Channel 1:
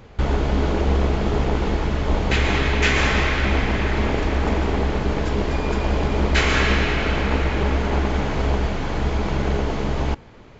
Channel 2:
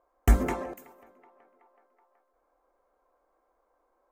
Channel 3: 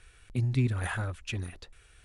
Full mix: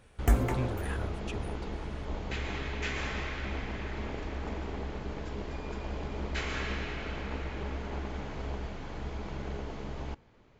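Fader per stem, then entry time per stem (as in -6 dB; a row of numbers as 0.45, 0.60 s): -16.0, -3.5, -7.0 dB; 0.00, 0.00, 0.00 s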